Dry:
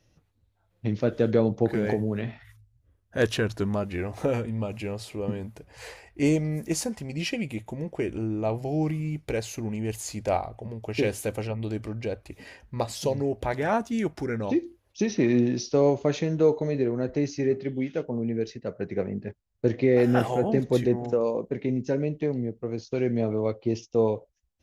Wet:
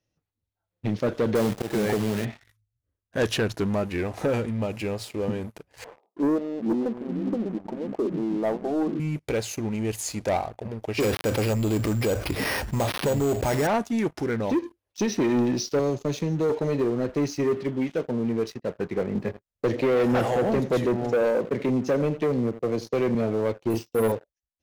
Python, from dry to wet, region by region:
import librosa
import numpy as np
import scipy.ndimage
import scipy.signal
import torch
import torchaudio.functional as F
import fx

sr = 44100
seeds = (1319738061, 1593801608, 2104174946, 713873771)

y = fx.chain(x, sr, fx.auto_swell(attack_ms=139.0),
    fx.quant_companded(bits=4), at=(1.35, 2.25))
y = fx.chain(y, sr, fx.brickwall_bandpass(low_hz=190.0, high_hz=1300.0),
    fx.echo_pitch(ms=334, semitones=-4, count=2, db_per_echo=-6.0), at=(5.84, 9.0))
y = fx.chain(y, sr, fx.dead_time(dead_ms=0.12),
    fx.resample_bad(factor=6, down='none', up='hold'),
    fx.env_flatten(amount_pct=70), at=(11.0, 13.67))
y = fx.chain(y, sr, fx.peak_eq(hz=1200.0, db=-14.0, octaves=2.4),
    fx.band_squash(depth_pct=40), at=(15.79, 16.5))
y = fx.chain(y, sr, fx.peak_eq(hz=550.0, db=5.0, octaves=0.34),
    fx.echo_single(ms=83, db=-17.5),
    fx.band_squash(depth_pct=40), at=(19.15, 23.15))
y = fx.chain(y, sr, fx.resample_bad(factor=4, down='filtered', up='hold'),
    fx.doubler(ms=36.0, db=-4.5), at=(23.7, 24.12))
y = fx.low_shelf(y, sr, hz=80.0, db=-9.0)
y = fx.leveller(y, sr, passes=3)
y = y * 10.0 ** (-7.0 / 20.0)